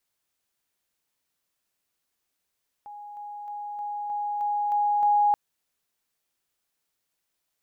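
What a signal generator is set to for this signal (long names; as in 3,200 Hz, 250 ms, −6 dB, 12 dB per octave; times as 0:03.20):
level staircase 827 Hz −38.5 dBFS, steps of 3 dB, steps 8, 0.31 s 0.00 s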